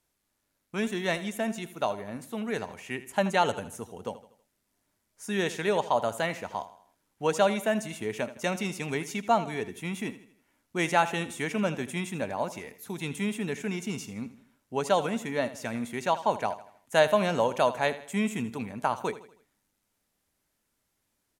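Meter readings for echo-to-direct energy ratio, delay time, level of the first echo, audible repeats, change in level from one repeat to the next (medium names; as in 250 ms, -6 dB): -14.0 dB, 80 ms, -15.0 dB, 3, -7.0 dB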